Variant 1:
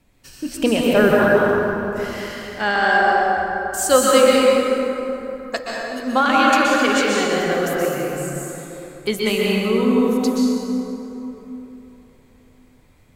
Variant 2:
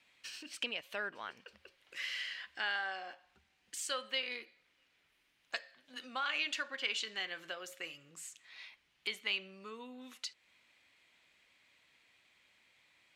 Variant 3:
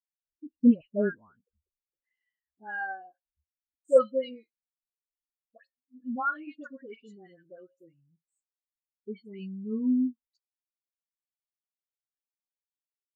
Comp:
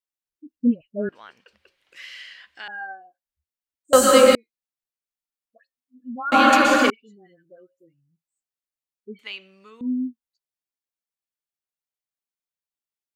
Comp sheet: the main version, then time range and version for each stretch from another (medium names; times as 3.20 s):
3
1.09–2.68 s: from 2
3.93–4.35 s: from 1
6.32–6.90 s: from 1
9.19–9.81 s: from 2